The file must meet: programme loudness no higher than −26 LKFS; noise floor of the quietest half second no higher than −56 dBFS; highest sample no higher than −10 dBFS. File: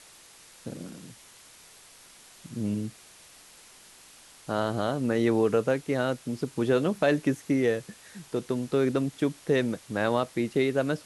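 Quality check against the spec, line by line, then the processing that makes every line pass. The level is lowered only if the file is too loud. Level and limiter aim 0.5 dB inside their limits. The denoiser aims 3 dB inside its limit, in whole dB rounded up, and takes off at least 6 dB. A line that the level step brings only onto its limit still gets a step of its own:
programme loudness −27.5 LKFS: in spec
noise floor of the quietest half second −53 dBFS: out of spec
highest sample −11.5 dBFS: in spec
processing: broadband denoise 6 dB, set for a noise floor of −53 dBFS

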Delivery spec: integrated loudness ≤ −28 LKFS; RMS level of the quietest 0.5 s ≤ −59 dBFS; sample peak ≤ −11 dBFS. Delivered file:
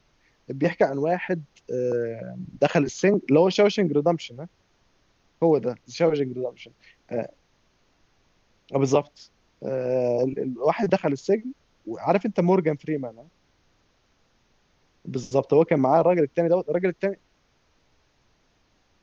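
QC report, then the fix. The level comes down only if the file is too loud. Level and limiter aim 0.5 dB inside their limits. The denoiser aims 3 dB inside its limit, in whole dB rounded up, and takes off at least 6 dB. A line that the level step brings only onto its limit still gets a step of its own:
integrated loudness −24.0 LKFS: out of spec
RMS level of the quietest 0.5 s −66 dBFS: in spec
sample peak −6.5 dBFS: out of spec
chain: level −4.5 dB
brickwall limiter −11.5 dBFS

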